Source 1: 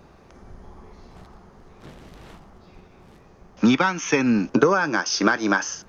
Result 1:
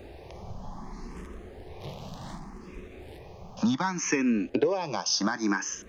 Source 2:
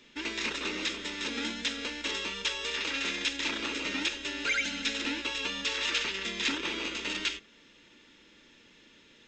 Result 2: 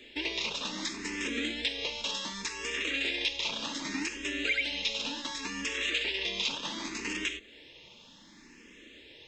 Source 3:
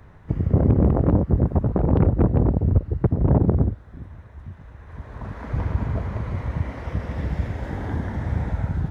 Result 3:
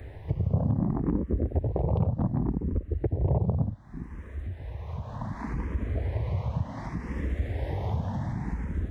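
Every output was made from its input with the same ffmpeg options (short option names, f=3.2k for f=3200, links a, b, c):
-filter_complex "[0:a]equalizer=f=1.4k:t=o:w=0.3:g=-10,acompressor=threshold=-39dB:ratio=2,asplit=2[a][b];[b]afreqshift=0.67[c];[a][c]amix=inputs=2:normalize=1,volume=8dB"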